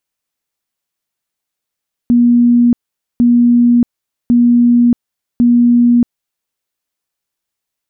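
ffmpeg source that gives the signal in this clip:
ffmpeg -f lavfi -i "aevalsrc='0.531*sin(2*PI*240*mod(t,1.1))*lt(mod(t,1.1),151/240)':duration=4.4:sample_rate=44100" out.wav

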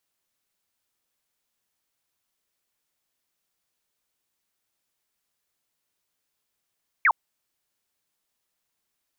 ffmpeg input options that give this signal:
ffmpeg -f lavfi -i "aevalsrc='0.178*clip(t/0.002,0,1)*clip((0.06-t)/0.002,0,1)*sin(2*PI*2400*0.06/log(800/2400)*(exp(log(800/2400)*t/0.06)-1))':duration=0.06:sample_rate=44100" out.wav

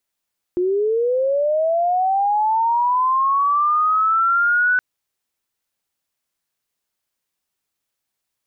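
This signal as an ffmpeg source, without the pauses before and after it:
ffmpeg -f lavfi -i "aevalsrc='pow(10,(-16+2.5*t/4.22)/20)*sin(2*PI*(350*t+1150*t*t/(2*4.22)))':duration=4.22:sample_rate=44100" out.wav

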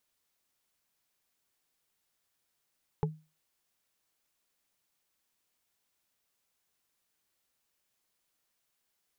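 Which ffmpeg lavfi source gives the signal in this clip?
ffmpeg -f lavfi -i "aevalsrc='0.0631*pow(10,-3*t/0.3)*sin(2*PI*156*t)+0.0531*pow(10,-3*t/0.089)*sin(2*PI*430.1*t)+0.0447*pow(10,-3*t/0.04)*sin(2*PI*843*t)':duration=0.45:sample_rate=44100" out.wav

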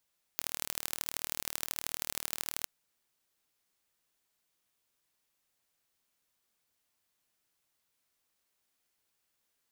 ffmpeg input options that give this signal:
ffmpeg -f lavfi -i "aevalsrc='0.562*eq(mod(n,1142),0)*(0.5+0.5*eq(mod(n,3426),0))':duration=2.27:sample_rate=44100" out.wav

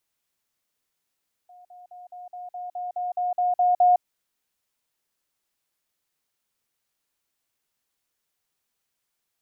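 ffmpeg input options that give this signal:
ffmpeg -f lavfi -i "aevalsrc='pow(10,(-46.5+3*floor(t/0.21))/20)*sin(2*PI*719*t)*clip(min(mod(t,0.21),0.16-mod(t,0.21))/0.005,0,1)':duration=2.52:sample_rate=44100" out.wav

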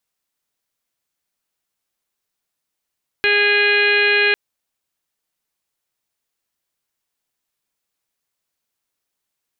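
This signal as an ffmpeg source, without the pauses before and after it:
ffmpeg -f lavfi -i "aevalsrc='0.1*sin(2*PI*411*t)+0.0251*sin(2*PI*822*t)+0.0168*sin(2*PI*1233*t)+0.141*sin(2*PI*1644*t)+0.0708*sin(2*PI*2055*t)+0.141*sin(2*PI*2466*t)+0.0531*sin(2*PI*2877*t)+0.0376*sin(2*PI*3288*t)+0.0126*sin(2*PI*3699*t)+0.0447*sin(2*PI*4110*t)':duration=1.1:sample_rate=44100" out.wav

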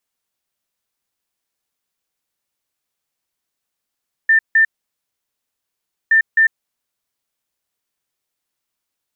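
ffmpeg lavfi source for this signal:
ffmpeg -f lavfi -i "aevalsrc='0.376*sin(2*PI*1790*t)*clip(min(mod(mod(t,1.82),0.26),0.1-mod(mod(t,1.82),0.26))/0.005,0,1)*lt(mod(t,1.82),0.52)':duration=3.64:sample_rate=44100" out.wav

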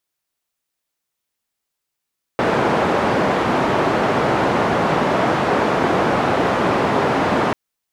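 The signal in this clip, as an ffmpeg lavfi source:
ffmpeg -f lavfi -i "anoisesrc=color=white:duration=5.14:sample_rate=44100:seed=1,highpass=frequency=130,lowpass=frequency=900,volume=1.4dB" out.wav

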